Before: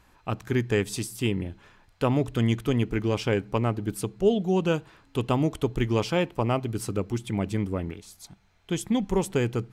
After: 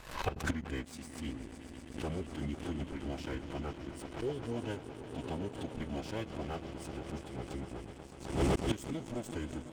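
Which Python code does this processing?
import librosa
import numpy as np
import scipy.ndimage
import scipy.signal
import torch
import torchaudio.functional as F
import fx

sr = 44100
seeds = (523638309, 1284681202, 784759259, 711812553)

y = fx.echo_swell(x, sr, ms=124, loudest=5, wet_db=-13)
y = fx.pitch_keep_formants(y, sr, semitones=-8.0)
y = fx.gate_flip(y, sr, shuts_db=-25.0, range_db=-26)
y = fx.leveller(y, sr, passes=3)
y = fx.pre_swell(y, sr, db_per_s=97.0)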